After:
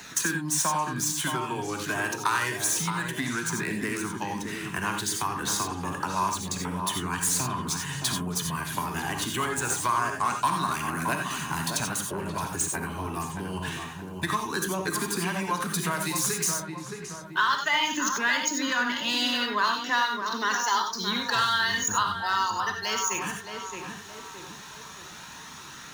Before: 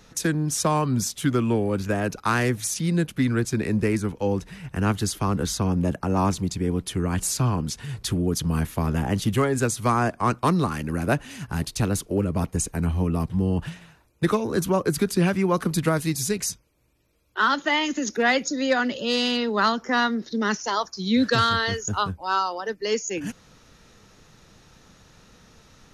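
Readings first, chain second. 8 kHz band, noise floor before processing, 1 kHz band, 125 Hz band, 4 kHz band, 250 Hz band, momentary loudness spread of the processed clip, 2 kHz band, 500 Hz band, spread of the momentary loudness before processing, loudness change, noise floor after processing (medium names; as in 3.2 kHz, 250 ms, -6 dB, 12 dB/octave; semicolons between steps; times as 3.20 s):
+3.0 dB, -55 dBFS, 0.0 dB, -10.5 dB, +1.0 dB, -9.0 dB, 12 LU, +1.0 dB, -10.0 dB, 5 LU, -3.0 dB, -43 dBFS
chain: median filter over 3 samples; compression 2.5:1, threshold -26 dBFS, peak gain reduction 7.5 dB; graphic EQ with 31 bands 500 Hz -10 dB, 1 kHz +11 dB, 1.6 kHz +5 dB, 5 kHz -6 dB; flange 0.27 Hz, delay 0.4 ms, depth 2.4 ms, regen -44%; high-pass 250 Hz 6 dB/octave; treble shelf 2.3 kHz +12 dB; filtered feedback delay 620 ms, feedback 39%, low-pass 1.4 kHz, level -6.5 dB; gated-style reverb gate 110 ms rising, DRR 4 dB; three bands compressed up and down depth 40%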